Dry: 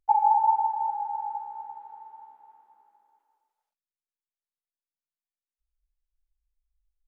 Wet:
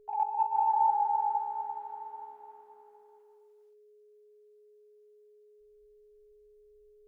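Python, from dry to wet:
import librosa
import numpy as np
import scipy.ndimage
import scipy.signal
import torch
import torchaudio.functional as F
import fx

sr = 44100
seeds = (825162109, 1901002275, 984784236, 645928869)

y = fx.over_compress(x, sr, threshold_db=-26.0, ratio=-0.5)
y = y + 10.0 ** (-57.0 / 20.0) * np.sin(2.0 * np.pi * 420.0 * np.arange(len(y)) / sr)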